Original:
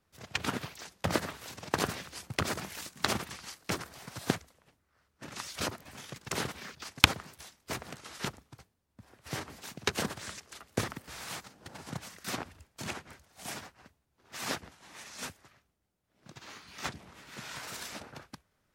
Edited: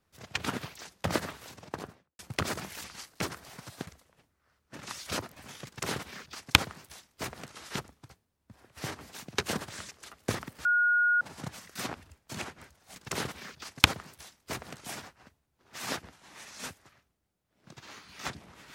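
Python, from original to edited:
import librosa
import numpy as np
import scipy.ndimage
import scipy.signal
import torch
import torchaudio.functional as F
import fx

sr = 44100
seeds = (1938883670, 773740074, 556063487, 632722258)

y = fx.studio_fade_out(x, sr, start_s=1.26, length_s=0.93)
y = fx.edit(y, sr, fx.cut(start_s=2.84, length_s=0.49),
    fx.fade_out_to(start_s=4.06, length_s=0.3, floor_db=-18.5),
    fx.duplicate(start_s=6.15, length_s=1.9, to_s=13.44),
    fx.bleep(start_s=11.14, length_s=0.56, hz=1440.0, db=-21.5), tone=tone)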